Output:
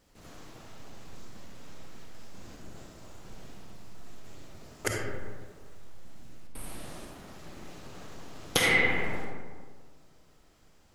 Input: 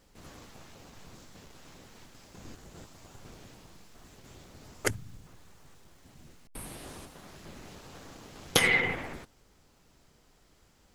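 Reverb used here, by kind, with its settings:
comb and all-pass reverb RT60 1.7 s, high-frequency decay 0.4×, pre-delay 10 ms, DRR −1 dB
level −2.5 dB

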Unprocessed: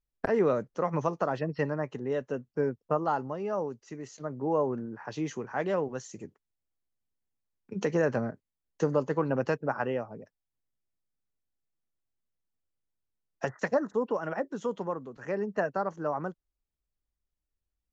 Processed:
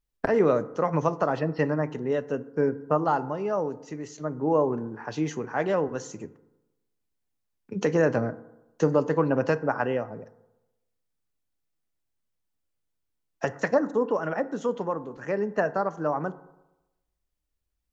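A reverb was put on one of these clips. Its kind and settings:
feedback delay network reverb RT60 0.98 s, low-frequency decay 0.95×, high-frequency decay 0.4×, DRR 13.5 dB
level +4 dB

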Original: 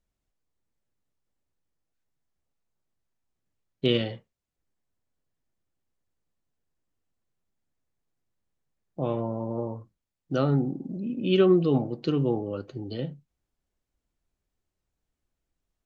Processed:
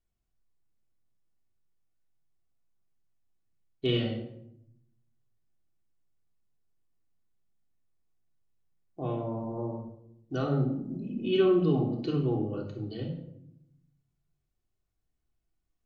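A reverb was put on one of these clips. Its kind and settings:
rectangular room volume 1,900 cubic metres, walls furnished, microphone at 3.4 metres
level −7.5 dB

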